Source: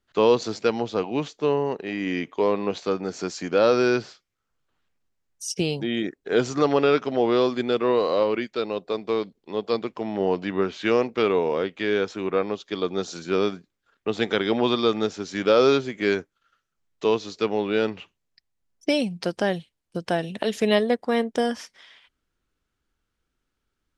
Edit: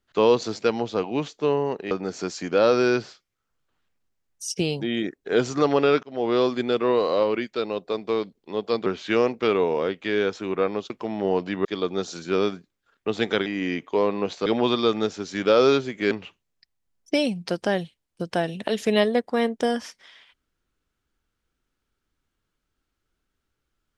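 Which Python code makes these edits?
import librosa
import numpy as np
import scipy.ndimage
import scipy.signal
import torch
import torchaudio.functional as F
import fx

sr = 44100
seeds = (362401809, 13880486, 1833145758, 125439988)

y = fx.edit(x, sr, fx.move(start_s=1.91, length_s=1.0, to_s=14.46),
    fx.fade_in_span(start_s=7.03, length_s=0.45, curve='qsin'),
    fx.move(start_s=9.86, length_s=0.75, to_s=12.65),
    fx.cut(start_s=16.11, length_s=1.75), tone=tone)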